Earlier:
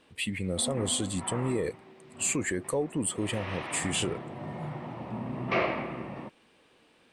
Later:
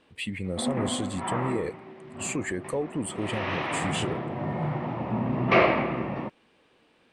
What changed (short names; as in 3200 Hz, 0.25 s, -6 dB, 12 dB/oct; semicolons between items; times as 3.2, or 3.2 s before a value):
background +8.0 dB; master: add high shelf 6600 Hz -9.5 dB